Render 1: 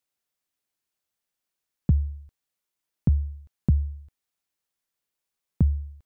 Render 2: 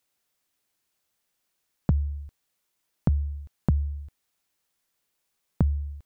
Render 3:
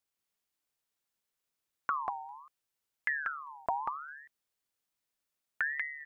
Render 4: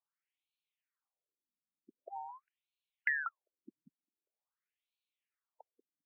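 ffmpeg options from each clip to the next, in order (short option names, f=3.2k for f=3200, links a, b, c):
-af "acompressor=threshold=-32dB:ratio=2.5,volume=7.5dB"
-af "aecho=1:1:189:0.708,aeval=exprs='val(0)*sin(2*PI*1400*n/s+1400*0.4/0.68*sin(2*PI*0.68*n/s))':c=same,volume=-8dB"
-af "afftfilt=real='re*between(b*sr/1024,210*pow(3200/210,0.5+0.5*sin(2*PI*0.45*pts/sr))/1.41,210*pow(3200/210,0.5+0.5*sin(2*PI*0.45*pts/sr))*1.41)':imag='im*between(b*sr/1024,210*pow(3200/210,0.5+0.5*sin(2*PI*0.45*pts/sr))/1.41,210*pow(3200/210,0.5+0.5*sin(2*PI*0.45*pts/sr))*1.41)':win_size=1024:overlap=0.75"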